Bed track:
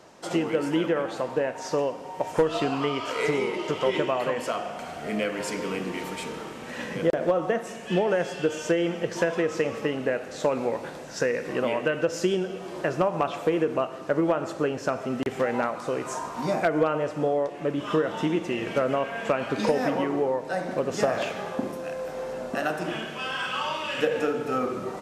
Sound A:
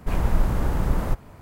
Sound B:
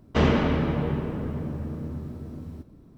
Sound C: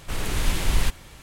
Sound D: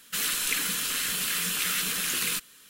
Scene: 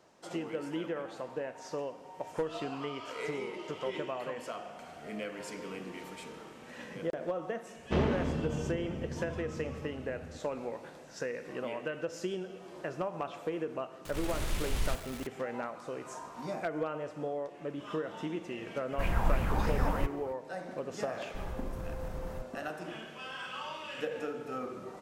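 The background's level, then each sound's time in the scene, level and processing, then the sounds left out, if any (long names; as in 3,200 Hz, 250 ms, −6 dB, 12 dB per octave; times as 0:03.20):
bed track −11.5 dB
0:07.76: mix in B −9 dB + adaptive Wiener filter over 25 samples
0:14.05: mix in C −11.5 dB + converter with a step at zero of −31 dBFS
0:18.92: mix in A −8 dB + auto-filter bell 3.1 Hz 810–2,700 Hz +12 dB
0:21.28: mix in A −15.5 dB + brickwall limiter −15 dBFS
not used: D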